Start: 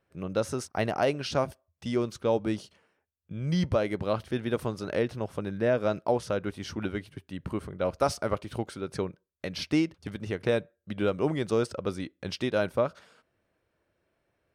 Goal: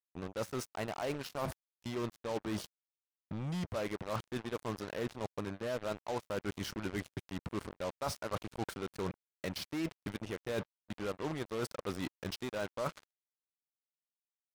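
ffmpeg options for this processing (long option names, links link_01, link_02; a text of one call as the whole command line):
ffmpeg -i in.wav -af "adynamicequalizer=threshold=0.00708:dfrequency=1000:dqfactor=1.8:tfrequency=1000:tqfactor=1.8:attack=5:release=100:ratio=0.375:range=3:mode=boostabove:tftype=bell,areverse,acompressor=threshold=-37dB:ratio=10,areverse,acrusher=bits=6:mix=0:aa=0.5,volume=2.5dB" out.wav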